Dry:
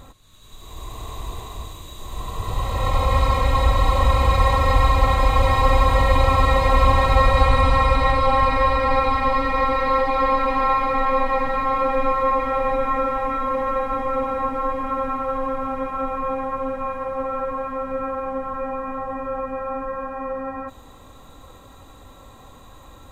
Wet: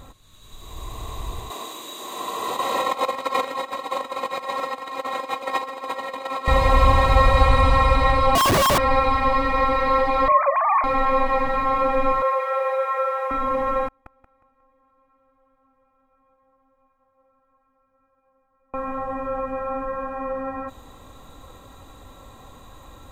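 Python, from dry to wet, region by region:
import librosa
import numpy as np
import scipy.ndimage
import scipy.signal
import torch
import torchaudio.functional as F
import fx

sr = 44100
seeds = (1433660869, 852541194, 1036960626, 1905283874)

y = fx.chain(x, sr, fx.over_compress(threshold_db=-21.0, ratio=-0.5),
    fx.highpass(hz=260.0, slope=24), at=(1.5, 6.48))
y = fx.chain(y, sr, fx.sine_speech(),
    fx.schmitt(flips_db=-22.0), at=(8.35, 8.78))
y = fx.chain(y, sr, fx.sine_speech(),
    fx.low_shelf(hz=260.0, db=12.0),
    fx.doubler(ms=39.0, db=-11), at=(10.28, 10.84))
y = fx.chain(y, sr, fx.cheby_ripple_highpass(hz=380.0, ripple_db=6),
    fx.high_shelf(hz=6300.0, db=7.5), at=(12.22, 13.31))
y = fx.chain(y, sr, fx.gate_flip(shuts_db=-26.0, range_db=-40),
    fx.echo_feedback(ms=180, feedback_pct=32, wet_db=-4.0), at=(13.88, 18.74))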